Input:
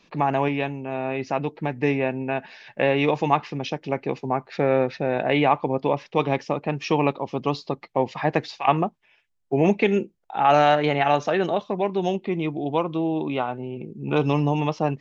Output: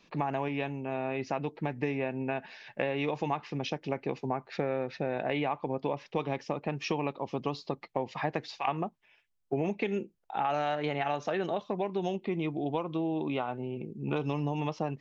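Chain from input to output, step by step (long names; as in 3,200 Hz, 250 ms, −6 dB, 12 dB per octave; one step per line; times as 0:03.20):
downward compressor, threshold −23 dBFS, peak gain reduction 10.5 dB
level −4 dB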